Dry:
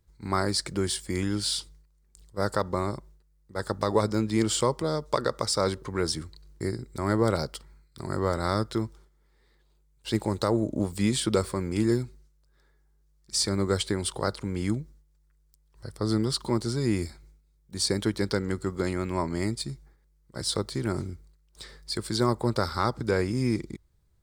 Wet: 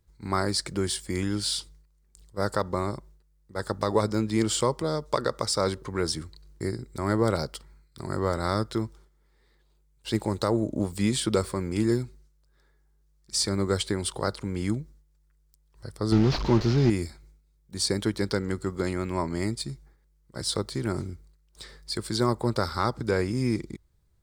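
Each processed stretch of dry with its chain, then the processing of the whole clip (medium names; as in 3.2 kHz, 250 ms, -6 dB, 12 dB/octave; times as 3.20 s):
16.12–16.90 s: one-bit delta coder 32 kbps, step -31.5 dBFS + tilt EQ -1.5 dB/octave + waveshaping leveller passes 1
whole clip: none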